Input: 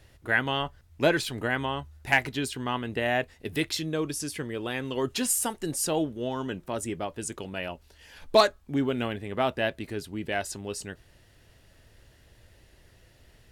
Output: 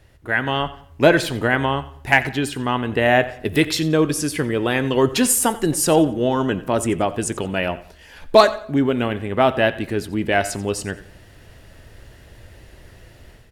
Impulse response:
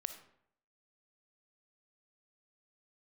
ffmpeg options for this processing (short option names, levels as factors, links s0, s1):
-filter_complex "[0:a]asplit=2[s0][s1];[1:a]atrim=start_sample=2205,lowpass=3000[s2];[s1][s2]afir=irnorm=-1:irlink=0,volume=0.668[s3];[s0][s3]amix=inputs=2:normalize=0,dynaudnorm=f=350:g=3:m=2.82,aecho=1:1:89|178|267:0.126|0.0378|0.0113"